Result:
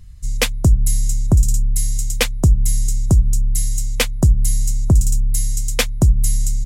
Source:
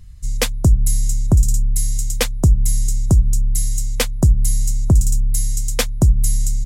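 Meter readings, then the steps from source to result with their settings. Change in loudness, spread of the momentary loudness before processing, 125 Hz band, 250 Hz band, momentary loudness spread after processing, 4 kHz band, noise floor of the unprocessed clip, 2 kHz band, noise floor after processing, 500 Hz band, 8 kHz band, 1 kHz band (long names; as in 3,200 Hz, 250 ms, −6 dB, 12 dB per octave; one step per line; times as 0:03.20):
0.0 dB, 6 LU, 0.0 dB, 0.0 dB, 5 LU, +2.0 dB, −23 dBFS, +3.5 dB, −23 dBFS, 0.0 dB, 0.0 dB, +0.5 dB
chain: dynamic equaliser 2,500 Hz, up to +5 dB, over −39 dBFS, Q 1.3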